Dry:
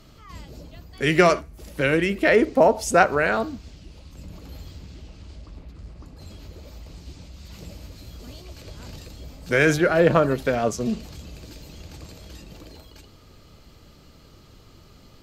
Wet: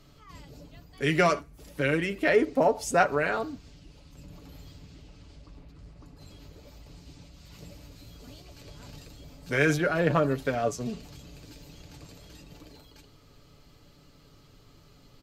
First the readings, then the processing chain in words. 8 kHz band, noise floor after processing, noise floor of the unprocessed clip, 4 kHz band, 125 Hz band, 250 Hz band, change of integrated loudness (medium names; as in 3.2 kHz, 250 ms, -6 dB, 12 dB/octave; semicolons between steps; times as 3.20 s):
-5.5 dB, -56 dBFS, -51 dBFS, -5.5 dB, -4.0 dB, -6.0 dB, -6.0 dB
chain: comb 7 ms, depth 47%; trim -6.5 dB